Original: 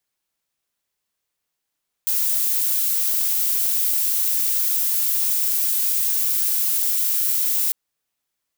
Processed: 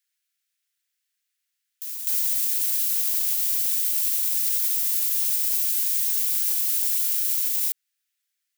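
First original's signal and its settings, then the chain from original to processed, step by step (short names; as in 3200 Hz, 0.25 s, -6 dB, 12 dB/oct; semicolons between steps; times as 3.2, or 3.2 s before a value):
noise violet, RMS -20.5 dBFS 5.65 s
steep high-pass 1500 Hz 36 dB/oct; limiter -14 dBFS; reverse echo 0.252 s -9 dB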